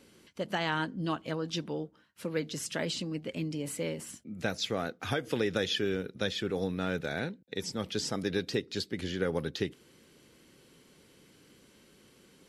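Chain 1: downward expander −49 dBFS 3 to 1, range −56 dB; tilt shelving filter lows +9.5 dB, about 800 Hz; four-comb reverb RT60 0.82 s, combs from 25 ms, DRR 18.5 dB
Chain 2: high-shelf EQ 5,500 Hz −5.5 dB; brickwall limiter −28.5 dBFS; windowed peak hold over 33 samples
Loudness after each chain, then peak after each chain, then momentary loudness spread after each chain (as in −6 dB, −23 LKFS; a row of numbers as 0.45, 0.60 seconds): −29.5, −41.5 LKFS; −11.5, −27.5 dBFS; 6, 6 LU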